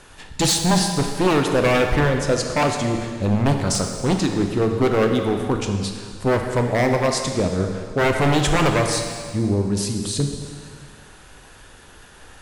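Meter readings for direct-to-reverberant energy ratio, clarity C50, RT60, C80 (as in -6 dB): 3.5 dB, 5.0 dB, 2.0 s, 6.0 dB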